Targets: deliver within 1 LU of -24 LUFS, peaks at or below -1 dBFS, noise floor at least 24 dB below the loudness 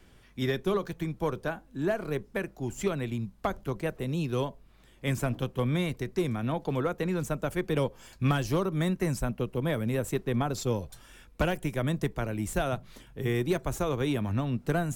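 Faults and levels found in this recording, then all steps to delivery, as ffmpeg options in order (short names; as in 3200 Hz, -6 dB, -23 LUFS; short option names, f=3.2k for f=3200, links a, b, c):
loudness -31.0 LUFS; peak -17.0 dBFS; loudness target -24.0 LUFS
-> -af "volume=7dB"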